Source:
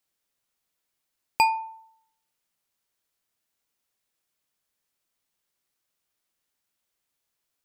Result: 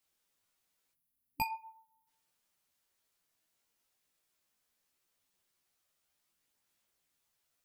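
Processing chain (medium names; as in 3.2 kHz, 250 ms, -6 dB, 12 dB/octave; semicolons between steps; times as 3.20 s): time-frequency box 0.94–2.07 s, 300–9900 Hz -15 dB; chorus voices 2, 0.37 Hz, delay 15 ms, depth 4.4 ms; trim +3.5 dB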